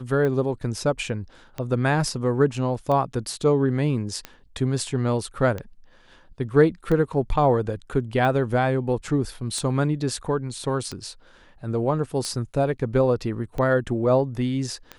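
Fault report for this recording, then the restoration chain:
scratch tick 45 rpm −17 dBFS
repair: click removal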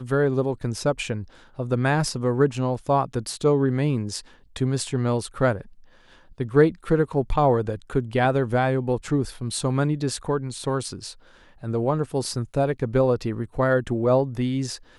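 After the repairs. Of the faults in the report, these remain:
none of them is left

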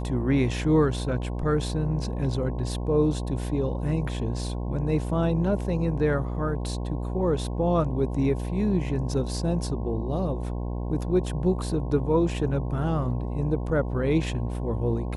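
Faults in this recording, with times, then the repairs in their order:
mains buzz 60 Hz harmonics 18 −30 dBFS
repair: hum removal 60 Hz, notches 18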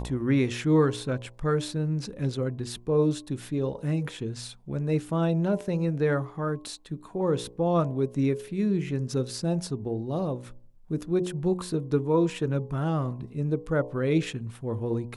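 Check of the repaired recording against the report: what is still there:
none of them is left

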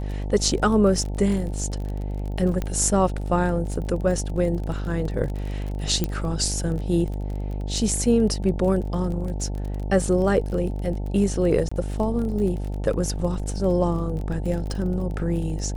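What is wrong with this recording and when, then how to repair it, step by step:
mains buzz 50 Hz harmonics 18 −28 dBFS
surface crackle 30 per second −30 dBFS
0:02.62: click −14 dBFS
0:06.04: click −10 dBFS
0:11.69–0:11.71: drop-out 25 ms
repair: click removal
hum removal 50 Hz, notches 18
repair the gap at 0:11.69, 25 ms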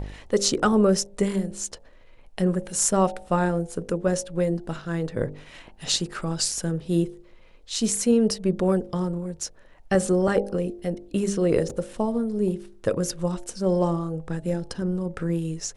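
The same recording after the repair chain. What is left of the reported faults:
0:02.62: click

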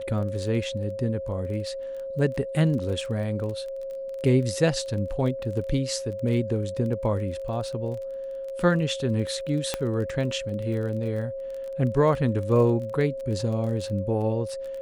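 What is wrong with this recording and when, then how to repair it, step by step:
surface crackle 23 per second −33 dBFS
whistle 540 Hz −31 dBFS
0:09.74: click −10 dBFS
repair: click removal
notch filter 540 Hz, Q 30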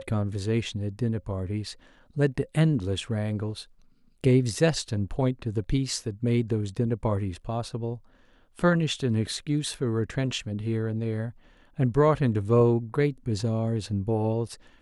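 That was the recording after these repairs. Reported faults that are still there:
0:09.74: click

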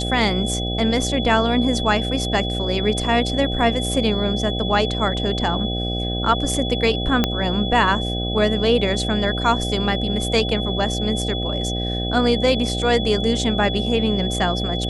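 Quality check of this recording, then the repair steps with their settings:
mains buzz 60 Hz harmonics 13 −25 dBFS
whistle 3,400 Hz −27 dBFS
0:07.24: click −4 dBFS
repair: click removal
notch filter 3,400 Hz, Q 30
hum removal 60 Hz, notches 13

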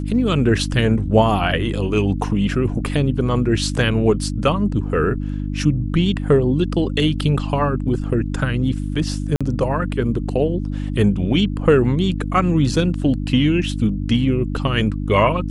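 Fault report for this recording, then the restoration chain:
mains hum 50 Hz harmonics 6 −24 dBFS
0:09.36–0:09.41: drop-out 46 ms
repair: hum removal 50 Hz, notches 6
repair the gap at 0:09.36, 46 ms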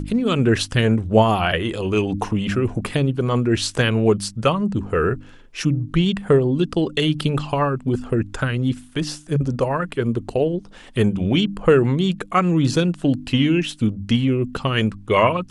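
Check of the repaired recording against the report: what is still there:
none of them is left

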